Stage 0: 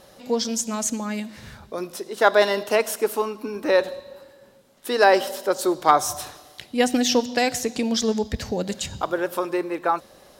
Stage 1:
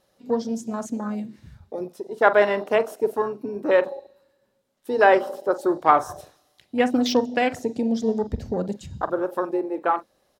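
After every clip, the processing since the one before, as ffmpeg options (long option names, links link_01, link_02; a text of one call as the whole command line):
ffmpeg -i in.wav -filter_complex "[0:a]afwtdn=0.0398,acrossover=split=2700[link_01][link_02];[link_01]asplit=2[link_03][link_04];[link_04]adelay=44,volume=-13dB[link_05];[link_03][link_05]amix=inputs=2:normalize=0[link_06];[link_02]asoftclip=type=tanh:threshold=-22.5dB[link_07];[link_06][link_07]amix=inputs=2:normalize=0" out.wav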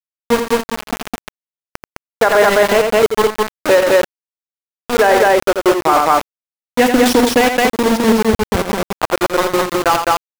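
ffmpeg -i in.wav -af "aeval=exprs='val(0)*gte(abs(val(0)),0.0891)':channel_layout=same,aecho=1:1:84.55|209.9:0.398|0.794,alimiter=level_in=10.5dB:limit=-1dB:release=50:level=0:latency=1,volume=-1dB" out.wav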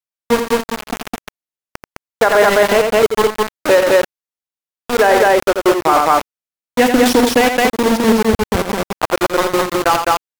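ffmpeg -i in.wav -ar 48000 -c:a aac -b:a 192k out.aac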